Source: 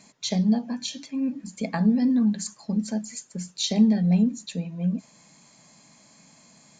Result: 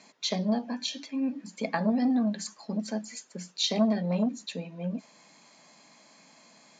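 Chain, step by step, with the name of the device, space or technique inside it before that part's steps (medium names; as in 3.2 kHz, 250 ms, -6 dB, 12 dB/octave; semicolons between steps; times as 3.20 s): public-address speaker with an overloaded transformer (transformer saturation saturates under 320 Hz; band-pass 300–5000 Hz); trim +1.5 dB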